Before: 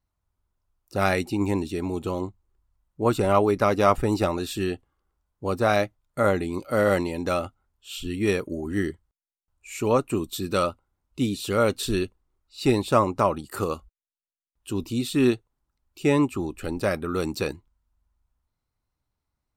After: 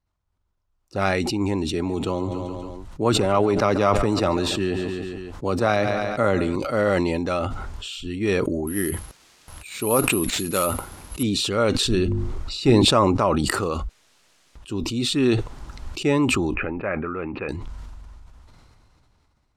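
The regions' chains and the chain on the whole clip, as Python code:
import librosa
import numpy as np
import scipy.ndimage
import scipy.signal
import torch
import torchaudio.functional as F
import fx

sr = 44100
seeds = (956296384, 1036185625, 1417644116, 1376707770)

y = fx.chain(x, sr, fx.echo_feedback(ms=140, feedback_pct=47, wet_db=-18.0),
    fx.band_squash(depth_pct=40), at=(1.73, 6.56))
y = fx.chain(y, sr, fx.low_shelf(hz=72.0, db=-11.5),
    fx.resample_bad(factor=4, down='none', up='zero_stuff'), at=(8.67, 11.23))
y = fx.chain(y, sr, fx.low_shelf(hz=390.0, db=6.0),
    fx.hum_notches(base_hz=50, count=7), at=(11.85, 12.85))
y = fx.chain(y, sr, fx.cheby1_lowpass(hz=2500.0, order=5),
    fx.low_shelf(hz=410.0, db=-8.0), at=(16.54, 17.49))
y = scipy.signal.sosfilt(scipy.signal.butter(2, 6800.0, 'lowpass', fs=sr, output='sos'), y)
y = fx.sustainer(y, sr, db_per_s=20.0)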